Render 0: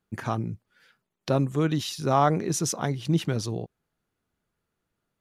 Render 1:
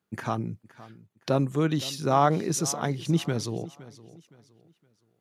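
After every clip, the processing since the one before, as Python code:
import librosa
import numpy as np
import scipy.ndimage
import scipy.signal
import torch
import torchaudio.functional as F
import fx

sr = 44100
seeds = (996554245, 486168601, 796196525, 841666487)

y = scipy.signal.sosfilt(scipy.signal.butter(2, 110.0, 'highpass', fs=sr, output='sos'), x)
y = fx.echo_feedback(y, sr, ms=516, feedback_pct=33, wet_db=-18.5)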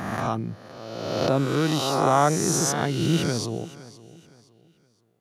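y = fx.spec_swells(x, sr, rise_s=1.51)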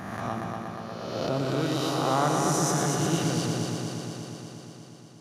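y = fx.echo_heads(x, sr, ms=119, heads='first and second', feedback_pct=75, wet_db=-7.0)
y = y * librosa.db_to_amplitude(-6.5)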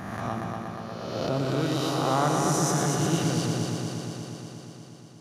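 y = fx.low_shelf(x, sr, hz=110.0, db=4.5)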